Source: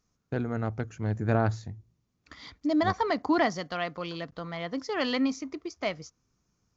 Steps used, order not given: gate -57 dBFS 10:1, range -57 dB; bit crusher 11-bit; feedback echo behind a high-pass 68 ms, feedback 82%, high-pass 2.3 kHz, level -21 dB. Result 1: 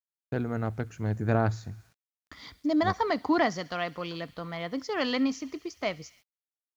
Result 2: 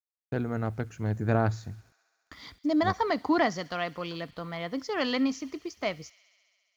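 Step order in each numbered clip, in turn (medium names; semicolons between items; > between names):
feedback echo behind a high-pass > gate > bit crusher; gate > bit crusher > feedback echo behind a high-pass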